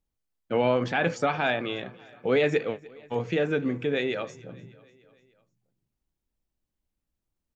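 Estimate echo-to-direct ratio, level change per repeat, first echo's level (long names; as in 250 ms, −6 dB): −20.5 dB, −4.5 dB, −22.5 dB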